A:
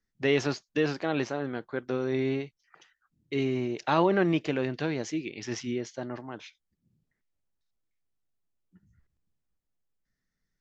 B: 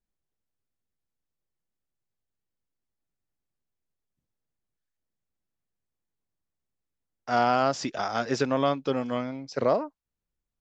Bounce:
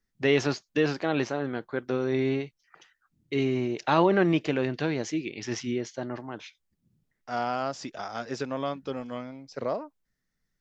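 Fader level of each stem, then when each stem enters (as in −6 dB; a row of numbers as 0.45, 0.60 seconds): +2.0, −6.5 decibels; 0.00, 0.00 seconds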